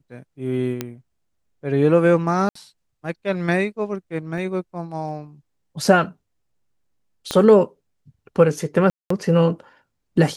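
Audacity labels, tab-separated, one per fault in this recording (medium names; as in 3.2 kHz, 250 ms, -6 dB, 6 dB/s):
0.810000	0.810000	pop -10 dBFS
2.490000	2.550000	dropout 64 ms
4.380000	4.380000	dropout 2.5 ms
7.310000	7.310000	pop -9 dBFS
8.900000	9.100000	dropout 204 ms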